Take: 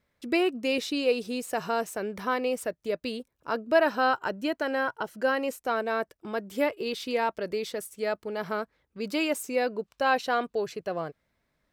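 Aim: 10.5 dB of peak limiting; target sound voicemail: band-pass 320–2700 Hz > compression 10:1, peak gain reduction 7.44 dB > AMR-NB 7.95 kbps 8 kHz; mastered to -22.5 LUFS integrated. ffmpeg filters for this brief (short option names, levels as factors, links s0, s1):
-af "alimiter=limit=0.0944:level=0:latency=1,highpass=320,lowpass=2700,acompressor=threshold=0.0282:ratio=10,volume=5.96" -ar 8000 -c:a libopencore_amrnb -b:a 7950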